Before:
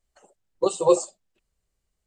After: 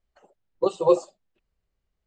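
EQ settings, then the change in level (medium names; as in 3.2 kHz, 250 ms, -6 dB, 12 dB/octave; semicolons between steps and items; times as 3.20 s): distance through air 160 m; 0.0 dB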